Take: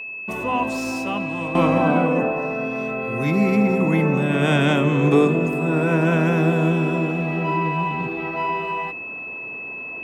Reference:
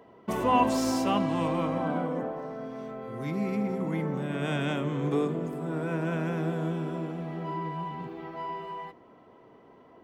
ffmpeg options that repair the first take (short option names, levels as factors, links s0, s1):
-af "bandreject=f=2600:w=30,asetnsamples=n=441:p=0,asendcmd='1.55 volume volume -11.5dB',volume=1"